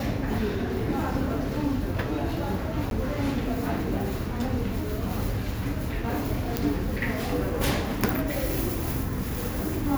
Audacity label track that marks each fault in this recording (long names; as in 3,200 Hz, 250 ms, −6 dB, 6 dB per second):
2.900000	2.910000	drop-out
6.570000	6.570000	click